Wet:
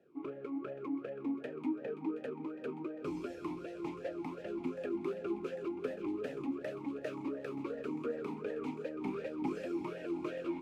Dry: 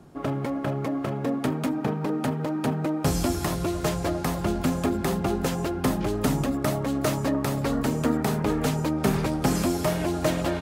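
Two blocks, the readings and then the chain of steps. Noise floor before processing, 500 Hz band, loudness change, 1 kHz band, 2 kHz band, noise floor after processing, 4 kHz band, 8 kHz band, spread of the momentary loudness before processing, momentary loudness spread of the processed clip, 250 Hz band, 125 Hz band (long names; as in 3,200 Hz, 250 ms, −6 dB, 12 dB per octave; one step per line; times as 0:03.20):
−32 dBFS, −10.5 dB, −13.5 dB, −17.0 dB, −15.0 dB, −48 dBFS, −22.5 dB, below −30 dB, 3 LU, 4 LU, −13.0 dB, −25.0 dB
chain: echo with a time of its own for lows and highs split 420 Hz, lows 369 ms, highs 528 ms, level −11.5 dB
formant filter swept between two vowels e-u 2.7 Hz
level −2.5 dB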